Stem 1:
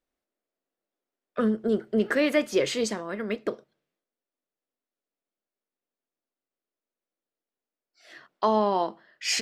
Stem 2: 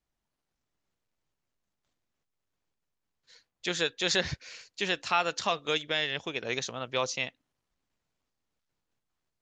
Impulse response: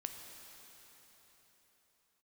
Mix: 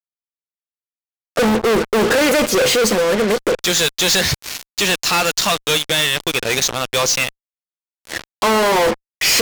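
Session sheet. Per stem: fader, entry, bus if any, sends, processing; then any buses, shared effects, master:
−0.5 dB, 0.00 s, no send, parametric band 500 Hz +12 dB 0.21 octaves; automatic ducking −8 dB, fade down 1.15 s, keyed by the second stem
−9.0 dB, 0.00 s, send −22.5 dB, high-shelf EQ 3,700 Hz +11.5 dB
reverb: on, pre-delay 8 ms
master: fuzz pedal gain 48 dB, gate −45 dBFS

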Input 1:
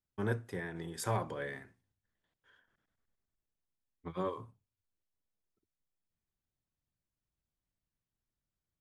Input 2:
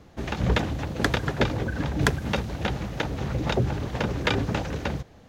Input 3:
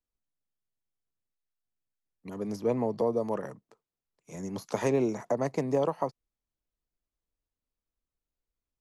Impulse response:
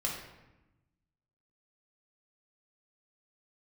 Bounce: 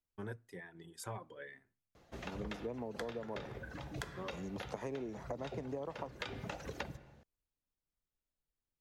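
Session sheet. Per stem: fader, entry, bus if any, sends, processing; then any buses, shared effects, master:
−7.0 dB, 0.00 s, no send, reverb reduction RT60 1.7 s
−3.5 dB, 1.95 s, send −18 dB, reverb reduction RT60 1.5 s; bass and treble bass −7 dB, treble +1 dB; automatic ducking −12 dB, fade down 0.70 s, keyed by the third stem
−4.5 dB, 0.00 s, no send, high-shelf EQ 4,400 Hz −7.5 dB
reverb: on, RT60 1.0 s, pre-delay 6 ms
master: downward compressor 5 to 1, threshold −39 dBFS, peak gain reduction 12 dB

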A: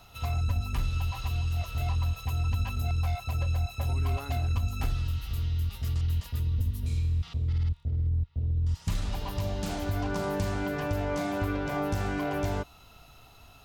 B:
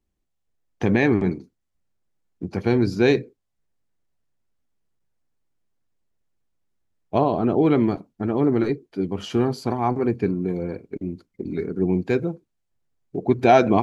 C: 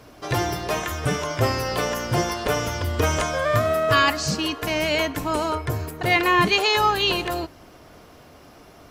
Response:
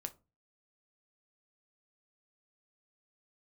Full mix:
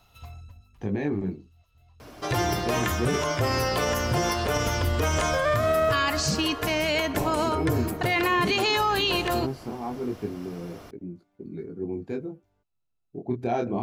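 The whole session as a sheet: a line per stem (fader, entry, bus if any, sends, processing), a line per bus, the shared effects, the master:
0:06.07 −6.5 dB → 0:06.80 −19.5 dB, 0.00 s, no send, automatic ducking −23 dB, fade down 0.70 s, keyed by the second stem
−5.5 dB, 0.00 s, no send, parametric band 2,500 Hz −7.5 dB 3 octaves; chorus effect 0.18 Hz, delay 17.5 ms, depth 7.9 ms
+1.5 dB, 2.00 s, no send, no processing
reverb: not used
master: brickwall limiter −15.5 dBFS, peak gain reduction 9.5 dB

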